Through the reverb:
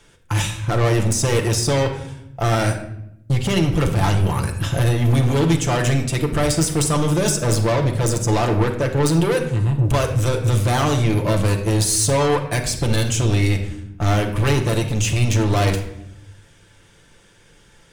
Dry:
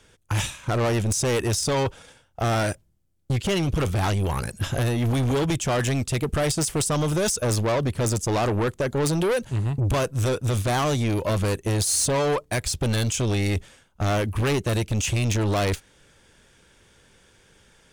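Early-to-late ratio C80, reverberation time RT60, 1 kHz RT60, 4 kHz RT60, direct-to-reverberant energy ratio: 11.0 dB, 0.80 s, 0.75 s, 0.55 s, 2.0 dB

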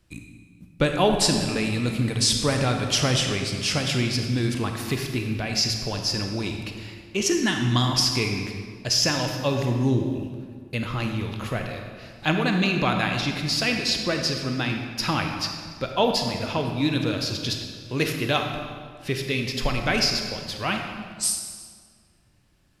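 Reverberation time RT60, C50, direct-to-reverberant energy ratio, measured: 1.9 s, 4.5 dB, 3.5 dB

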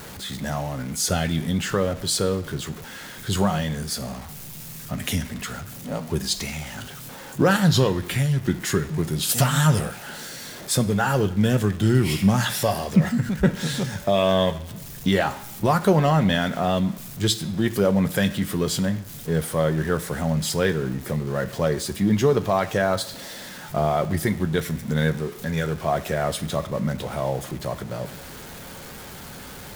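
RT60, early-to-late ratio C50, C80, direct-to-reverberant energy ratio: 1.0 s, 15.5 dB, 18.0 dB, 7.5 dB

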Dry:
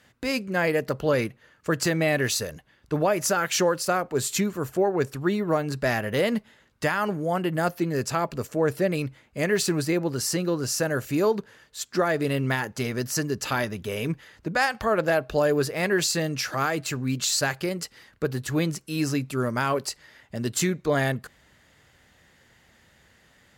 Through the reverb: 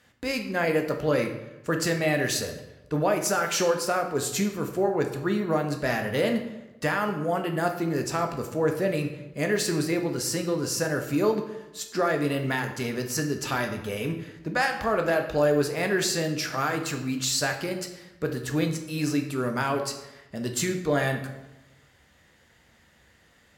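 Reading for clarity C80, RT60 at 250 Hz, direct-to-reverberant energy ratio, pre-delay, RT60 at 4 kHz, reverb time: 11.0 dB, 1.1 s, 4.0 dB, 4 ms, 0.70 s, 1.0 s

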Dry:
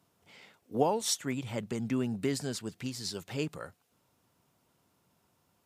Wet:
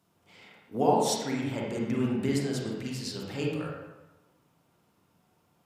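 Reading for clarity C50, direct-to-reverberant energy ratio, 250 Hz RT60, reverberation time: -0.5 dB, -3.5 dB, 1.0 s, 1.1 s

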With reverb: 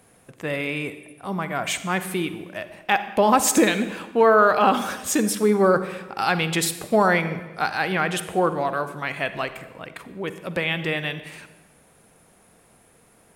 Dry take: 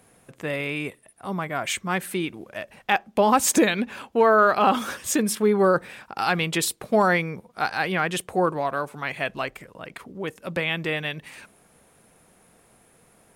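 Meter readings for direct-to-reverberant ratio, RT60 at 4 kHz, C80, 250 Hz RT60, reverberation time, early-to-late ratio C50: 11.0 dB, 0.95 s, 13.5 dB, 1.4 s, 1.2 s, 11.5 dB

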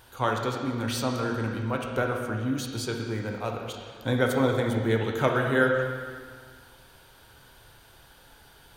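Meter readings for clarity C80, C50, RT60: 4.5 dB, 3.0 dB, 1.8 s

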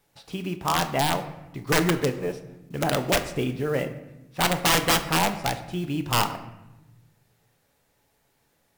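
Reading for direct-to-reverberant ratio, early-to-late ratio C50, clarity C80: 7.5 dB, 11.5 dB, 13.5 dB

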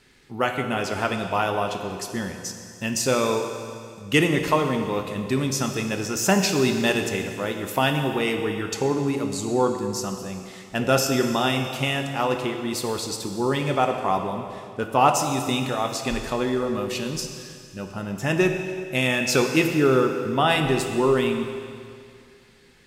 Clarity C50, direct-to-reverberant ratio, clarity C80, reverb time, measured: 6.0 dB, 4.5 dB, 7.0 dB, 2.3 s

